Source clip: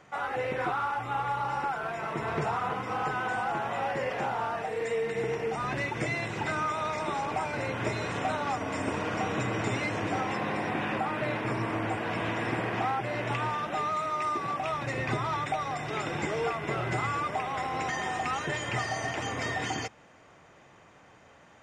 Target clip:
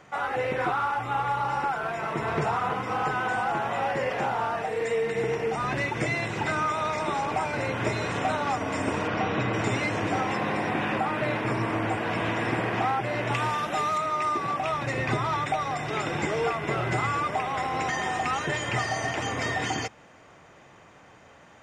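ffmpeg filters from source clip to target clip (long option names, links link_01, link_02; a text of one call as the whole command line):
ffmpeg -i in.wav -filter_complex "[0:a]asplit=3[link_01][link_02][link_03];[link_01]afade=type=out:start_time=9.07:duration=0.02[link_04];[link_02]lowpass=frequency=5100:width=0.5412,lowpass=frequency=5100:width=1.3066,afade=type=in:start_time=9.07:duration=0.02,afade=type=out:start_time=9.52:duration=0.02[link_05];[link_03]afade=type=in:start_time=9.52:duration=0.02[link_06];[link_04][link_05][link_06]amix=inputs=3:normalize=0,asettb=1/sr,asplit=3[link_07][link_08][link_09];[link_07]atrim=end=13.344[link_10];[link_08]atrim=start=13.34:end=13.98,asetpts=PTS-STARTPTS,afade=type=in:duration=0.004:curve=qsin,afade=type=out:start_time=0.636:duration=0.004:curve=qsin,aemphasis=mode=production:type=cd[link_11];[link_09]atrim=start=13.976[link_12];[link_10][link_11]acrossfade=duration=0.004:curve1=hsin:curve2=qsin[link_13];[link_13][link_12]acrossfade=duration=0.004:curve1=qsin:curve2=hsin,volume=3.5dB" out.wav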